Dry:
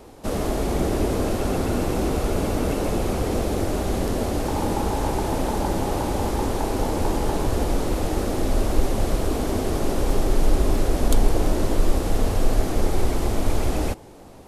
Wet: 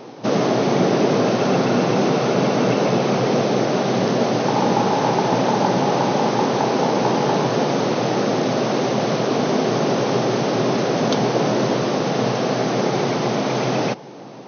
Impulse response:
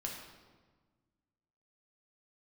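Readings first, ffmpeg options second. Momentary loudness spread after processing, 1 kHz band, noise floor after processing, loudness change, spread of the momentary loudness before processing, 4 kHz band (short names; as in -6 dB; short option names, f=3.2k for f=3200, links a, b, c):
3 LU, +8.5 dB, -36 dBFS, +5.5 dB, 2 LU, +8.5 dB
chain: -af "afftfilt=real='re*between(b*sr/4096,110,6400)':imag='im*between(b*sr/4096,110,6400)':win_size=4096:overlap=0.75,adynamicequalizer=threshold=0.00708:dfrequency=310:dqfactor=3.4:tfrequency=310:tqfactor=3.4:attack=5:release=100:ratio=0.375:range=3:mode=cutabove:tftype=bell,volume=8.5dB"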